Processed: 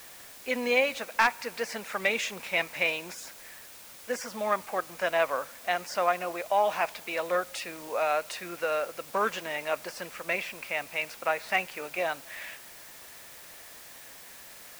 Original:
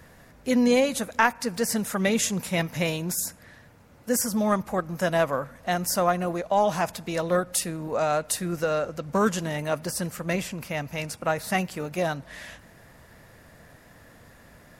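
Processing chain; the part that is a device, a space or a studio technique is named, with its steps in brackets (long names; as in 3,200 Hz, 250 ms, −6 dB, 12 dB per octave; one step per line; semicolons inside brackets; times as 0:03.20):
drive-through speaker (band-pass filter 520–3,800 Hz; parametric band 2,400 Hz +8.5 dB 0.43 octaves; hard clipping −12.5 dBFS, distortion −20 dB; white noise bed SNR 17 dB)
level −1.5 dB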